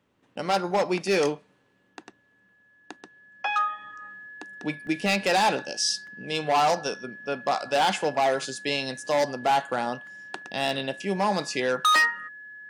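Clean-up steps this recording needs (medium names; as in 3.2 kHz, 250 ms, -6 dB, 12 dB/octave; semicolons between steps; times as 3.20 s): clip repair -15 dBFS; band-stop 1.7 kHz, Q 30; interpolate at 1.88/2.49/4.87/6.07/10.07 s, 1.3 ms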